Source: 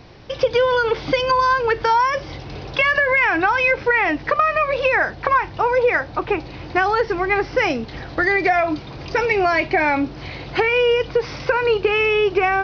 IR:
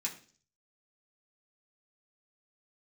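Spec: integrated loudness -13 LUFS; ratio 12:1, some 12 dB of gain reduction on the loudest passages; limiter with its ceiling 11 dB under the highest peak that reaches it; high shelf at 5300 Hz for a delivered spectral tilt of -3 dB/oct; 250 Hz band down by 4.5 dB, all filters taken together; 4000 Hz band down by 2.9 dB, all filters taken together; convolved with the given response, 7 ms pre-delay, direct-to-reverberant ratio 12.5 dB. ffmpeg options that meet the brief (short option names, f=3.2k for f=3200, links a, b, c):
-filter_complex "[0:a]equalizer=f=250:t=o:g=-7,equalizer=f=4k:t=o:g=-6.5,highshelf=f=5.3k:g=5,acompressor=threshold=-26dB:ratio=12,alimiter=limit=-23dB:level=0:latency=1,asplit=2[a][b];[1:a]atrim=start_sample=2205,adelay=7[c];[b][c]afir=irnorm=-1:irlink=0,volume=-14dB[d];[a][d]amix=inputs=2:normalize=0,volume=18.5dB"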